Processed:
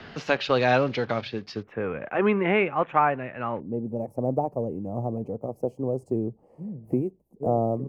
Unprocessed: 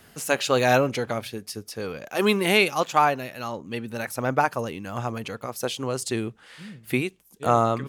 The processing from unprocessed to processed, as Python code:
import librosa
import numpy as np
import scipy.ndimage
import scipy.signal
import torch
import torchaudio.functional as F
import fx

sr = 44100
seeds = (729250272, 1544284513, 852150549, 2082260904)

y = fx.block_float(x, sr, bits=5)
y = fx.cheby2_lowpass(y, sr, hz=fx.steps((0.0, 8400.0), (1.62, 4400.0), (3.59, 1400.0)), order=4, stop_db=40)
y = fx.band_squash(y, sr, depth_pct=40)